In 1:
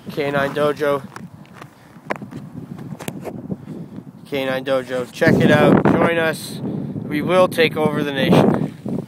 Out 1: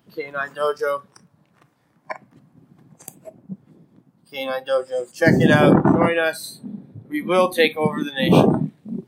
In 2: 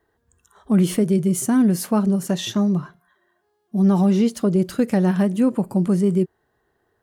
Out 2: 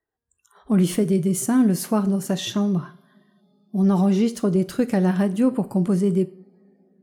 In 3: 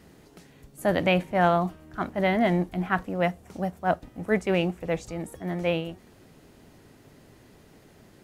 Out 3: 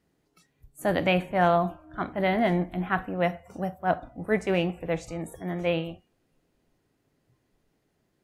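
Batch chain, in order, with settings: two-slope reverb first 0.48 s, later 4.8 s, from -28 dB, DRR 12.5 dB; spectral noise reduction 18 dB; gain -1 dB

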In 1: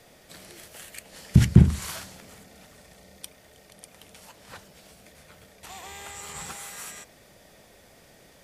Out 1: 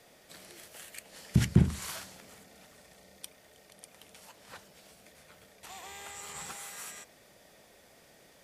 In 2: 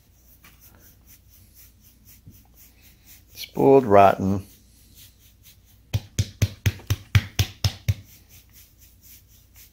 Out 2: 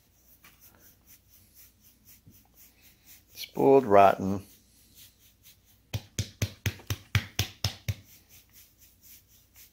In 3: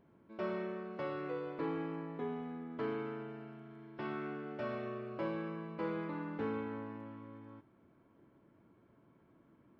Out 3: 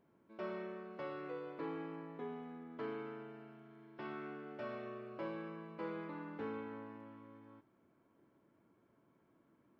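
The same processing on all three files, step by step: low shelf 140 Hz -8.5 dB; gain -4 dB

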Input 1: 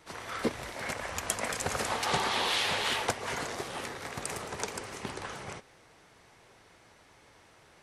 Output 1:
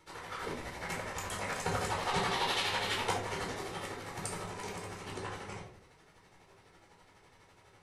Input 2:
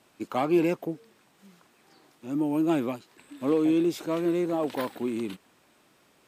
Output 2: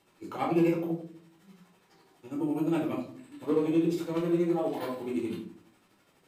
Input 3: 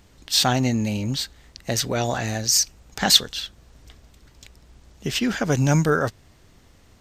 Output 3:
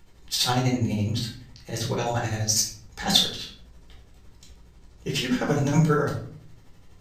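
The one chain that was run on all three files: tremolo 12 Hz, depth 87%; shoebox room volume 610 m³, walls furnished, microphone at 4.3 m; gain -5.5 dB

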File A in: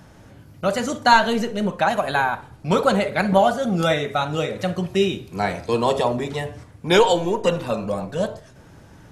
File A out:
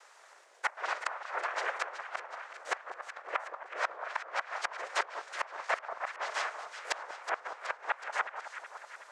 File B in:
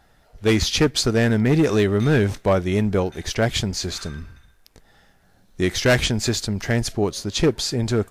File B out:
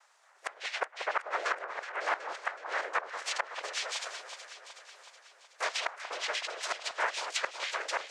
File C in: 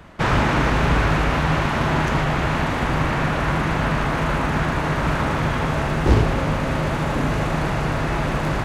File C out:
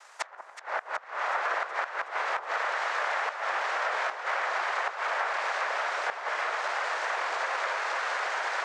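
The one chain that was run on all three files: noise vocoder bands 3; steep high-pass 600 Hz 36 dB/oct; treble ducked by the level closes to 1600 Hz, closed at -19.5 dBFS; flipped gate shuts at -14 dBFS, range -24 dB; on a send: echo with dull and thin repeats by turns 0.186 s, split 1300 Hz, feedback 77%, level -8 dB; on the sum: gain -3.5 dB

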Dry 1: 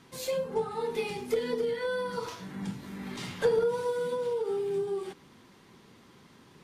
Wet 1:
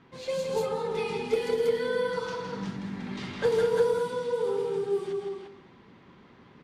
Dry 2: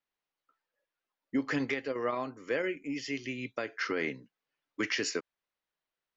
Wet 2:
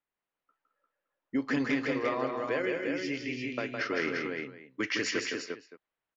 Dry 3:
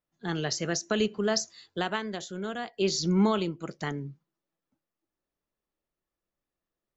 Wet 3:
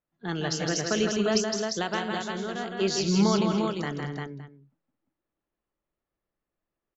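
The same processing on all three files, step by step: tapped delay 0.161/0.217/0.27/0.326/0.349/0.566 s -4.5/-11/-19.5/-18.5/-4.5/-18 dB; low-pass opened by the level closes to 2500 Hz, open at -22.5 dBFS

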